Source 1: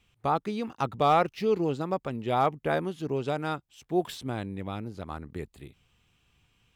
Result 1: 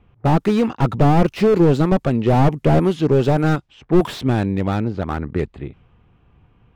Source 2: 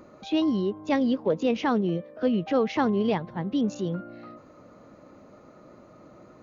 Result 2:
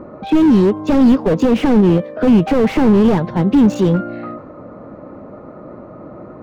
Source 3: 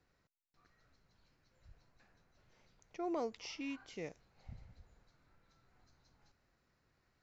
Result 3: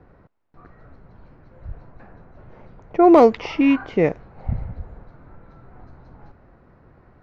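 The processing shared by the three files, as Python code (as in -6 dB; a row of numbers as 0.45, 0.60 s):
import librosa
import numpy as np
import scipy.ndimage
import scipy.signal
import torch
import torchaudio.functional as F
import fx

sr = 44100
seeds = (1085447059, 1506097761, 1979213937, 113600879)

y = fx.env_lowpass(x, sr, base_hz=1000.0, full_db=-25.5)
y = fx.slew_limit(y, sr, full_power_hz=18.0)
y = y * 10.0 ** (-2 / 20.0) / np.max(np.abs(y))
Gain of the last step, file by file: +15.5, +16.5, +27.0 dB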